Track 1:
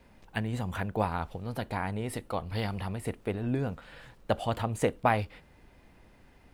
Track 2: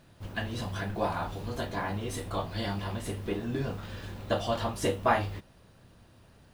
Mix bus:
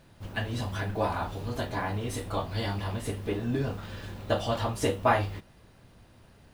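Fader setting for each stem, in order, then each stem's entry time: -6.0, +0.5 dB; 0.00, 0.00 s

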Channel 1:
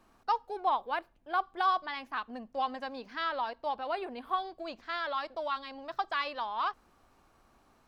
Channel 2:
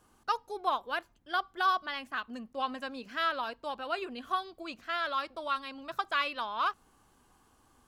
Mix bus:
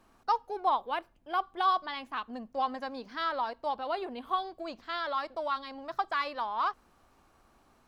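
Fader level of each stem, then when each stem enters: +0.5, -12.5 dB; 0.00, 0.00 s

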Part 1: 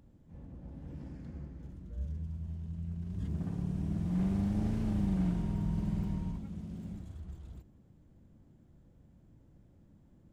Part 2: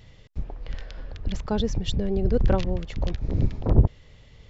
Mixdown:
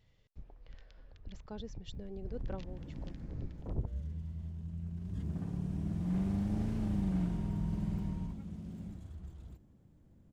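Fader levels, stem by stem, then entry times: -2.0, -19.0 dB; 1.95, 0.00 s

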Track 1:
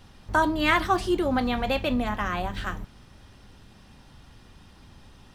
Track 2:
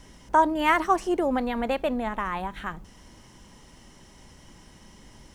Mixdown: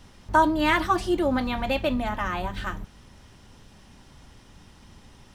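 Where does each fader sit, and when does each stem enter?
-1.0, -6.0 dB; 0.00, 0.00 s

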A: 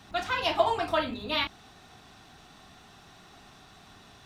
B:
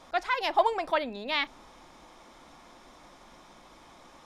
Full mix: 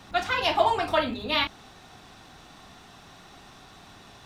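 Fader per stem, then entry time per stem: +3.0, -5.5 dB; 0.00, 0.00 s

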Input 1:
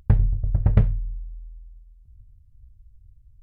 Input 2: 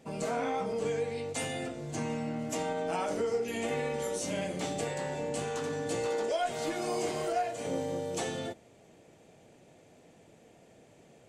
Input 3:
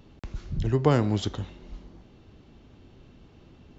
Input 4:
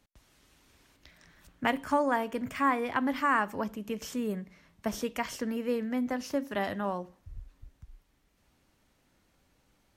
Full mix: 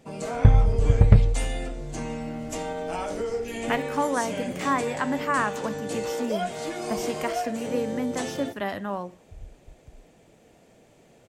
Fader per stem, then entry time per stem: +2.5, +1.5, -16.5, +1.5 dB; 0.35, 0.00, 0.00, 2.05 s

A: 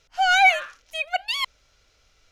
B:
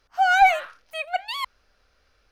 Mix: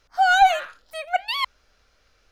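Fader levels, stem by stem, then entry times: -6.5, +1.0 dB; 0.00, 0.00 s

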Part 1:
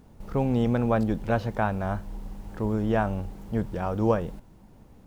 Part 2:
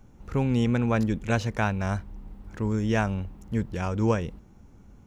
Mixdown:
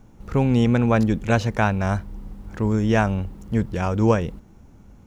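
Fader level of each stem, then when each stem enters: -5.5, +3.0 dB; 0.00, 0.00 s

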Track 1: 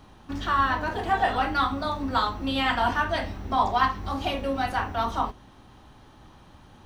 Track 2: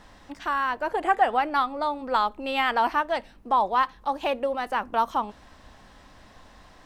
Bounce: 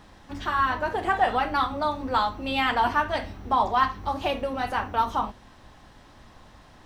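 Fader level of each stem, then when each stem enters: -4.0, -2.0 dB; 0.00, 0.00 s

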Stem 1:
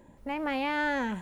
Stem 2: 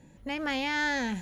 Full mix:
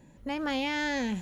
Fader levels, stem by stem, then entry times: -8.0, -1.5 dB; 0.00, 0.00 s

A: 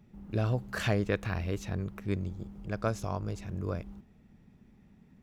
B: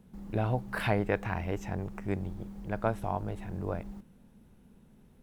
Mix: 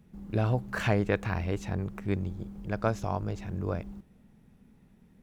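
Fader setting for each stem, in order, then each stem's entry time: -2.0, -5.0 dB; 0.00, 0.00 s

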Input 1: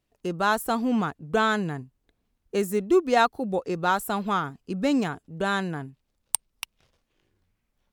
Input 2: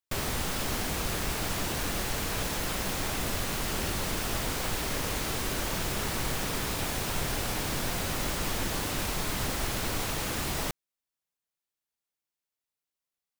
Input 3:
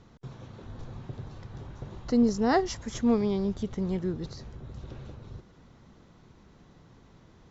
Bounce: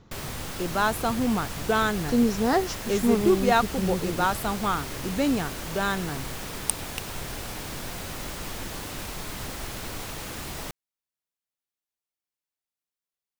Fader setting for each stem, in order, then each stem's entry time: -1.0, -4.0, +1.0 dB; 0.35, 0.00, 0.00 s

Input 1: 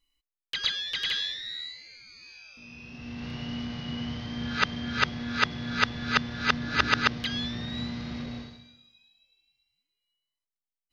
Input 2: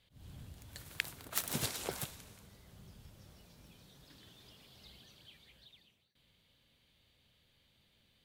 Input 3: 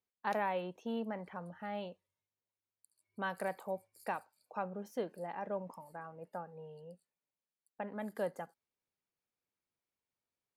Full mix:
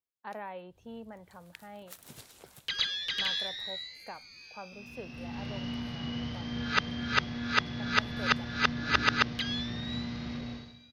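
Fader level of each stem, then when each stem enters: -2.0, -13.5, -6.5 dB; 2.15, 0.55, 0.00 s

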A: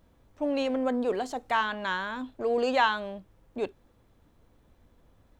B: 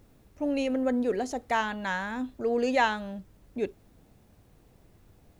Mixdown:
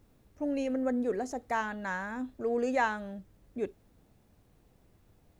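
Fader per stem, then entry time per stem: -13.5, -5.5 dB; 0.00, 0.00 s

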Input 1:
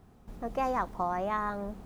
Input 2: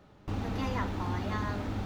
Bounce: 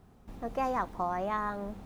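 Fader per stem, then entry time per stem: -1.0, -18.0 dB; 0.00, 0.00 s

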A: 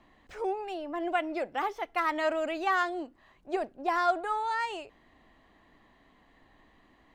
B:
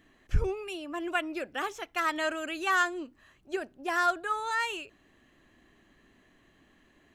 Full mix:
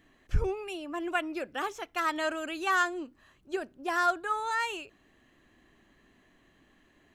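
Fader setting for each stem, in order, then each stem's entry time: -15.5, -1.0 dB; 0.00, 0.00 s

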